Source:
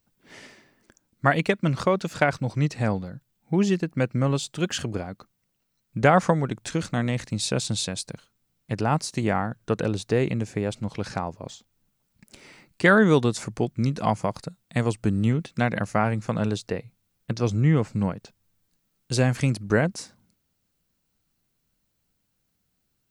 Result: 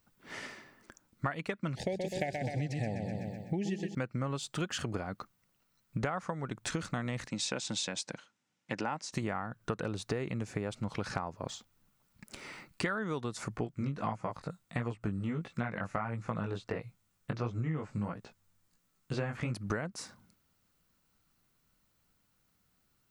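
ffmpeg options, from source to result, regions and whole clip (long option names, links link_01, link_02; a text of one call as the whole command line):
ffmpeg -i in.wav -filter_complex "[0:a]asettb=1/sr,asplit=3[link_01][link_02][link_03];[link_01]atrim=end=1.754[link_04];[link_02]atrim=start=1.75:end=3.95,asetpts=PTS-STARTPTS,afade=type=in:duration=0.004:curve=qsin,afade=type=out:start_time=2.196:duration=0.004:curve=qsin,asuperstop=centerf=1200:order=12:qfactor=1.4,aecho=1:1:126|252|378|504|630|756:0.473|0.241|0.123|0.0628|0.032|0.0163,atrim=end_sample=97020[link_05];[link_03]atrim=start=3.946[link_06];[link_04][link_05]acrossfade=duration=0.004:curve1=hsin:curve2=qsin[link_07];[link_07][link_06]acrossfade=duration=0.004:curve1=qsin:curve2=hsin,asettb=1/sr,asplit=3[link_08][link_09][link_10];[link_08]atrim=end=7.284[link_11];[link_09]atrim=start=7.28:end=9.13,asetpts=PTS-STARTPTS,afade=type=in:duration=0.004:curve=qsin,afade=type=out:start_time=1.846:duration=0.004:curve=qsin,highpass=250,equalizer=frequency=420:width_type=q:width=4:gain=-7,equalizer=frequency=1200:width_type=q:width=4:gain=-8,equalizer=frequency=4300:width_type=q:width=4:gain=-6,lowpass=frequency=7300:width=0.5412,lowpass=frequency=7300:width=1.3066,bandreject=frequency=680:width=8.5[link_12];[link_10]atrim=start=9.126[link_13];[link_11][link_12]acrossfade=duration=0.004:curve1=hsin:curve2=qsin[link_14];[link_14][link_13]acrossfade=duration=0.004:curve1=qsin:curve2=hsin,asettb=1/sr,asplit=3[link_15][link_16][link_17];[link_15]atrim=end=13.564[link_18];[link_16]atrim=start=13.56:end=19.54,asetpts=PTS-STARTPTS,afade=type=in:duration=0.004:curve=qsin,afade=type=out:start_time=5.976:duration=0.004:curve=qsin,acrossover=split=3400[link_19][link_20];[link_20]acompressor=threshold=-57dB:ratio=4:attack=1:release=60[link_21];[link_19][link_21]amix=inputs=2:normalize=0,equalizer=frequency=7500:width=2:gain=4,flanger=delay=16.5:depth=4.9:speed=1.5[link_22];[link_17]atrim=start=19.536[link_23];[link_18][link_22]acrossfade=duration=0.004:curve1=hsin:curve2=qsin[link_24];[link_24][link_23]acrossfade=duration=0.004:curve1=qsin:curve2=hsin,equalizer=frequency=1300:width_type=o:width=1.2:gain=7,acompressor=threshold=-31dB:ratio=12,bandreject=frequency=1600:width=23" out.wav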